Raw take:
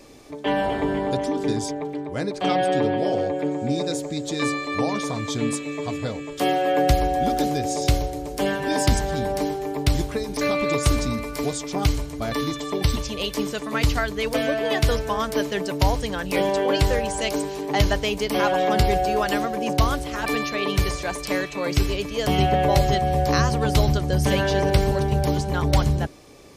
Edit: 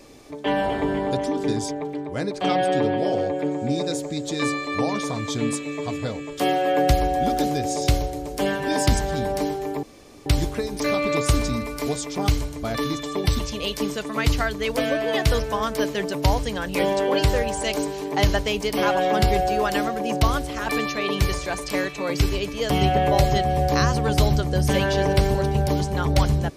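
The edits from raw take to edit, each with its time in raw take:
0:09.83: splice in room tone 0.43 s

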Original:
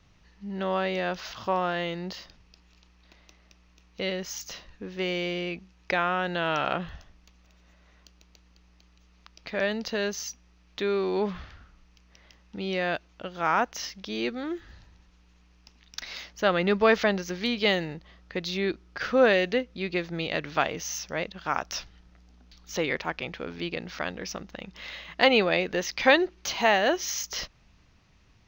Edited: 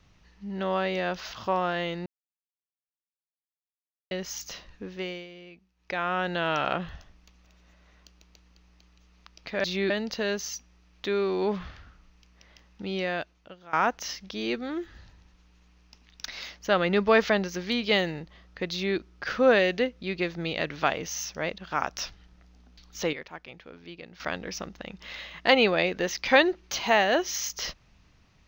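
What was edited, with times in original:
0:02.06–0:04.11: silence
0:04.83–0:06.19: duck −15.5 dB, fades 0.44 s
0:12.67–0:13.47: fade out, to −20.5 dB
0:18.45–0:18.71: duplicate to 0:09.64
0:22.87–0:23.94: clip gain −11 dB

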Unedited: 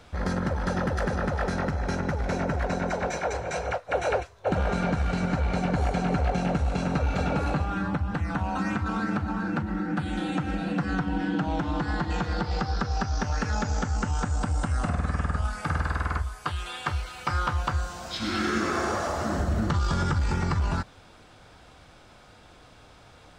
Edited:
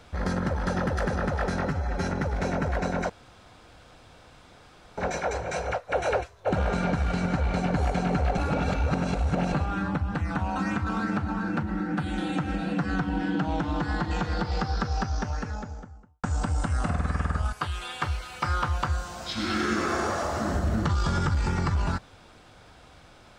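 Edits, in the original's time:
0:01.67–0:01.92: time-stretch 1.5×
0:02.97: splice in room tone 1.88 s
0:06.37–0:07.52: reverse
0:12.86–0:14.23: fade out and dull
0:15.52–0:16.37: remove

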